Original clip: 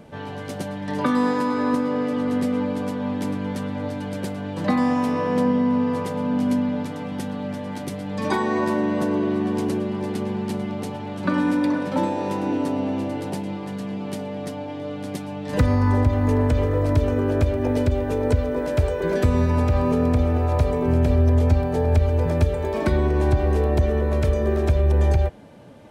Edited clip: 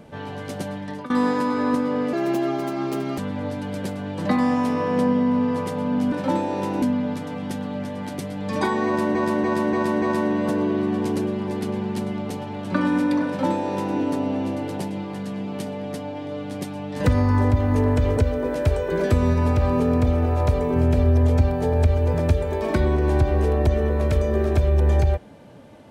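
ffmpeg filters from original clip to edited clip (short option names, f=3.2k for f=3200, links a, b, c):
-filter_complex "[0:a]asplit=11[a][b][c][d][e][f][g][h][i][j][k];[a]atrim=end=1.1,asetpts=PTS-STARTPTS,afade=t=out:st=0.75:d=0.35:silence=0.0944061[l];[b]atrim=start=1.1:end=2.134,asetpts=PTS-STARTPTS,afade=t=in:d=0.004:c=hsin:silence=0.0944061[m];[c]atrim=start=2.13:end=3.57,asetpts=PTS-STARTPTS,asetrate=60417,aresample=44100,atrim=end_sample=46353,asetpts=PTS-STARTPTS[n];[d]atrim=start=3.566:end=6.512[o];[e]atrim=start=11.798:end=12.502[p];[f]atrim=start=6.508:end=8.842[q];[g]atrim=start=8.548:end=8.842[r];[h]atrim=start=8.548:end=8.842[s];[i]atrim=start=8.548:end=8.842[t];[j]atrim=start=8.548:end=16.702[u];[k]atrim=start=18.288[v];[l][m]concat=n=2:v=0:a=1[w];[w][n]acrossfade=d=0.004:c1=hsin:c2=hsin[x];[x][o]acrossfade=d=0.004:c1=hsin:c2=hsin[y];[y][p]acrossfade=d=0.004:c1=hsin:c2=hsin[z];[z][q]acrossfade=d=0.004:c1=hsin:c2=hsin[aa];[aa][r]acrossfade=d=0.004:c1=hsin:c2=hsin[ab];[ab][s]acrossfade=d=0.004:c1=hsin:c2=hsin[ac];[ac][t]acrossfade=d=0.004:c1=hsin:c2=hsin[ad];[ad][u]acrossfade=d=0.004:c1=hsin:c2=hsin[ae];[ae][v]acrossfade=d=0.004:c1=hsin:c2=hsin"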